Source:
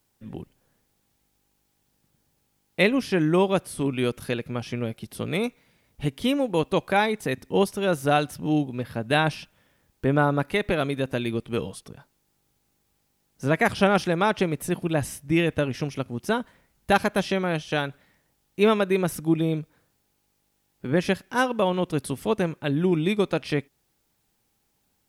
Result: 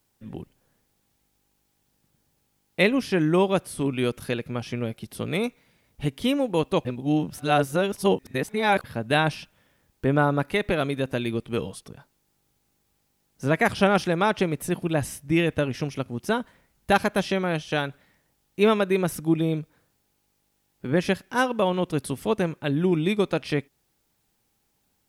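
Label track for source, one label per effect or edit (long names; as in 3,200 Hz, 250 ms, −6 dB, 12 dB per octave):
6.850000	8.840000	reverse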